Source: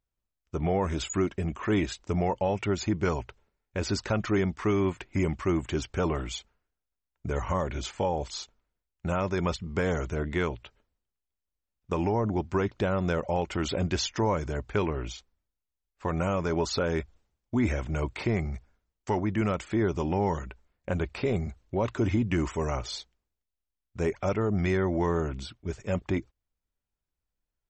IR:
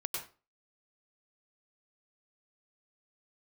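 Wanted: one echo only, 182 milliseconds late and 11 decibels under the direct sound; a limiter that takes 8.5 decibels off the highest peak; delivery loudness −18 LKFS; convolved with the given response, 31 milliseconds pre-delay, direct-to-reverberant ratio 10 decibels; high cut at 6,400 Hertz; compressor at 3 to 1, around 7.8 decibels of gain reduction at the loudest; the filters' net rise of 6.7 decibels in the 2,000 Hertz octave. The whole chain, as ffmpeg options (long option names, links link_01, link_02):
-filter_complex "[0:a]lowpass=6400,equalizer=frequency=2000:width_type=o:gain=8.5,acompressor=threshold=-32dB:ratio=3,alimiter=level_in=2dB:limit=-24dB:level=0:latency=1,volume=-2dB,aecho=1:1:182:0.282,asplit=2[link_01][link_02];[1:a]atrim=start_sample=2205,adelay=31[link_03];[link_02][link_03]afir=irnorm=-1:irlink=0,volume=-12dB[link_04];[link_01][link_04]amix=inputs=2:normalize=0,volume=18.5dB"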